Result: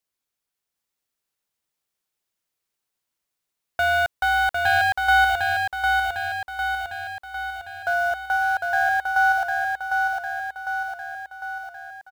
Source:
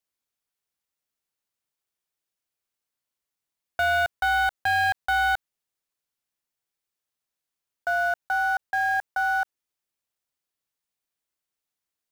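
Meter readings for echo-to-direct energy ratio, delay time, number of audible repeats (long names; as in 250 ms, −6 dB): −1.5 dB, 753 ms, 7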